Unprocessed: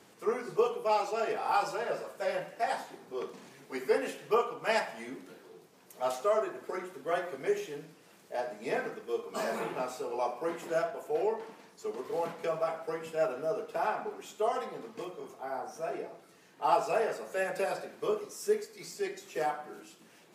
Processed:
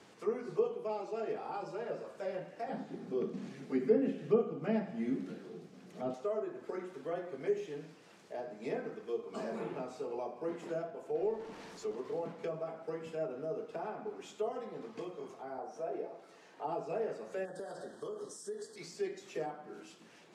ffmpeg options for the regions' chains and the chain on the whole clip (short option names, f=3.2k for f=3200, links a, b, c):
-filter_complex "[0:a]asettb=1/sr,asplit=3[a][b][c];[a]atrim=end=2.694[d];[b]atrim=start=2.69:end=6.14,asetpts=PTS-STARTPTS,afade=t=in:d=0.004:c=qsin,afade=t=out:st=3.446:d=0.004:c=qsin,acrossover=split=4100[e][f];[f]acompressor=threshold=-57dB:ratio=4:attack=1:release=60[g];[e][g]amix=inputs=2:normalize=0,equalizer=f=200:w=1:g=14,bandreject=f=950:w=6.1[h];[c]atrim=start=6.136[i];[d][h]acrossfade=d=0.004:c1=hsin:c2=qsin[j];[j][i]acrossfade=d=0.004:c1=qsin:c2=hsin,asettb=1/sr,asplit=3[k][l][m];[k]atrim=end=11.224[n];[l]atrim=start=11.22:end=11.94,asetpts=PTS-STARTPTS,afade=t=in:d=0.004:c=qsin,afade=t=out:st=0.716:d=0.004:c=qsin,aeval=exprs='val(0)+0.5*0.00531*sgn(val(0))':c=same,highshelf=f=12k:g=-4[o];[m]atrim=start=11.936[p];[n][o]acrossfade=d=0.004:c1=hsin:c2=qsin[q];[q][p]acrossfade=d=0.004:c1=qsin:c2=hsin,asettb=1/sr,asplit=3[r][s][t];[r]atrim=end=15.584[u];[s]atrim=start=15.58:end=16.67,asetpts=PTS-STARTPTS,afade=t=in:d=0.004:c=qsin,afade=t=out:st=1.086:d=0.004:c=qsin,highpass=f=270:p=1,equalizer=f=650:w=0.86:g=6[v];[t]atrim=start=16.666[w];[u][v]acrossfade=d=0.004:c1=hsin:c2=qsin[x];[x][w]acrossfade=d=0.004:c1=qsin:c2=hsin,asettb=1/sr,asplit=3[y][z][aa];[y]atrim=end=17.454[ab];[z]atrim=start=17.45:end=18.76,asetpts=PTS-STARTPTS,afade=t=in:d=0.004:c=qsin,afade=t=out:st=1.306:d=0.004:c=qsin,asuperstop=centerf=2400:order=12:qfactor=2.1,equalizer=f=8.7k:t=o:w=0.44:g=12.5,acompressor=threshold=-36dB:ratio=6:attack=3.2:release=140:knee=1:detection=peak[ac];[aa]atrim=start=18.756[ad];[ab][ac]acrossfade=d=0.004:c1=hsin:c2=qsin[ae];[ae][ad]acrossfade=d=0.004:c1=qsin:c2=hsin,lowpass=6.9k,acrossover=split=470[af][ag];[ag]acompressor=threshold=-49dB:ratio=3[ah];[af][ah]amix=inputs=2:normalize=0"